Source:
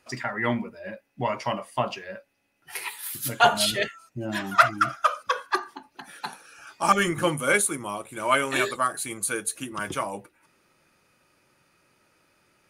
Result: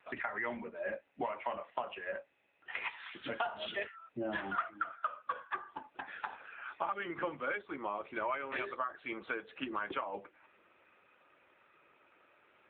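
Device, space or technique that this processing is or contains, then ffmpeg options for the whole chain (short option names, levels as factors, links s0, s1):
voicemail: -af "highpass=360,lowpass=3000,acompressor=threshold=0.0178:ratio=10,volume=1.33" -ar 8000 -c:a libopencore_amrnb -b:a 7950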